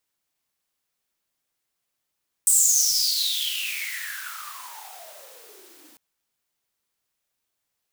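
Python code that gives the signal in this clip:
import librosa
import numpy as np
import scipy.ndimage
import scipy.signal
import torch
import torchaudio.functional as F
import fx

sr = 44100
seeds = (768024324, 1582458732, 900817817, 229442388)

y = fx.riser_noise(sr, seeds[0], length_s=3.5, colour='white', kind='highpass', start_hz=8400.0, end_hz=270.0, q=11.0, swell_db=-29, law='exponential')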